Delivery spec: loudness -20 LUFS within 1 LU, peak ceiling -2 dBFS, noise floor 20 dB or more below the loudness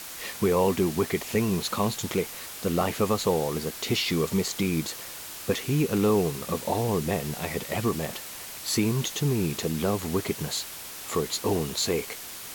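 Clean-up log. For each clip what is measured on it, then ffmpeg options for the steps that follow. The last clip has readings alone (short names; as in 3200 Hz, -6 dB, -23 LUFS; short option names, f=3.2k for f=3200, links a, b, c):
noise floor -40 dBFS; noise floor target -48 dBFS; loudness -27.5 LUFS; peak -12.5 dBFS; loudness target -20.0 LUFS
-> -af "afftdn=nr=8:nf=-40"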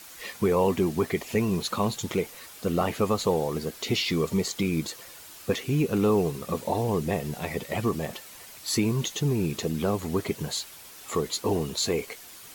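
noise floor -46 dBFS; noise floor target -48 dBFS
-> -af "afftdn=nr=6:nf=-46"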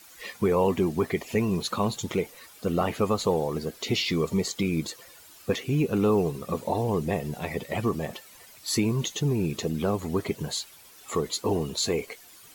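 noise floor -51 dBFS; loudness -27.5 LUFS; peak -12.5 dBFS; loudness target -20.0 LUFS
-> -af "volume=7.5dB"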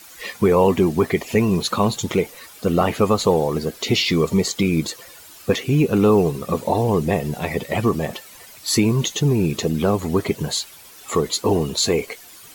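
loudness -20.0 LUFS; peak -5.0 dBFS; noise floor -44 dBFS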